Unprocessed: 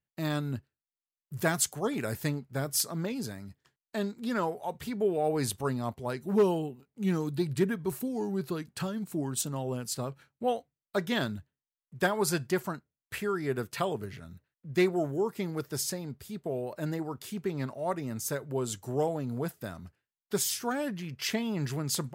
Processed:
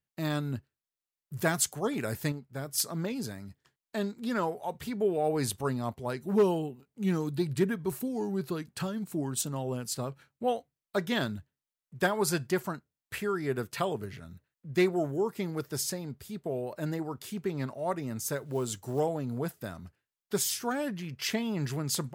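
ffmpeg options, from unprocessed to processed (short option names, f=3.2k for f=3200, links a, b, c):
-filter_complex "[0:a]asettb=1/sr,asplit=3[a][b][c];[a]atrim=end=18.374[d];[b]atrim=start=18.37:end=19,asetpts=PTS-STARTPTS,afade=t=in:d=0.004:c=qsin,afade=t=out:st=0.626:d=0.004:c=qsin,acrusher=bits=7:mode=log:mix=0:aa=0.000001[e];[c]atrim=start=18.996[f];[d][e]acrossfade=d=0.004:c1=hsin:c2=qsin[g];[g][f]acrossfade=d=0.004:c1=qsin:c2=hsin,asplit=3[h][i][j];[h]atrim=end=2.322[k];[i]atrim=start=2.318:end=2.782,asetpts=PTS-STARTPTS,volume=-5dB[l];[j]atrim=start=2.778[m];[k][l]acrossfade=d=0.004:c1=hsin:c2=hsin[n];[n][m]acrossfade=d=0.004:c1=hsin:c2=hsin"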